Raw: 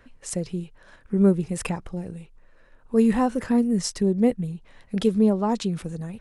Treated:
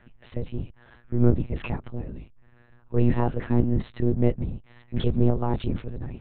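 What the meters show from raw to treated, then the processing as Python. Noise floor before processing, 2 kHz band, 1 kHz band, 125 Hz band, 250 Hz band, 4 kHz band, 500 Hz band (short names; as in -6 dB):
-55 dBFS, -3.5 dB, -4.0 dB, +5.0 dB, -5.0 dB, n/a, -4.0 dB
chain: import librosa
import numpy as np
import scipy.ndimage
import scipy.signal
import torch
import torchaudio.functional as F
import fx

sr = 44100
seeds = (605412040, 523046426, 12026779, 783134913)

y = fx.octave_divider(x, sr, octaves=2, level_db=1.0)
y = fx.lpc_monotone(y, sr, seeds[0], pitch_hz=120.0, order=10)
y = y * librosa.db_to_amplitude(-3.0)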